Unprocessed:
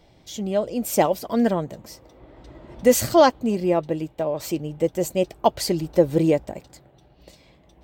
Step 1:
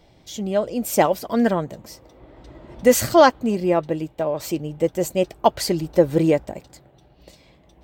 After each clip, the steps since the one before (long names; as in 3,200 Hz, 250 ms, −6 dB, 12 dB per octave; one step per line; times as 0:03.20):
dynamic equaliser 1,500 Hz, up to +5 dB, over −35 dBFS, Q 1.3
level +1 dB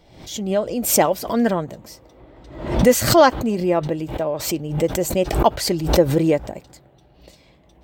background raised ahead of every attack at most 81 dB per second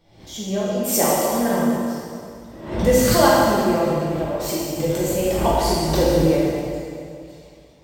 dense smooth reverb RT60 2.3 s, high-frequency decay 0.9×, DRR −7.5 dB
level −8.5 dB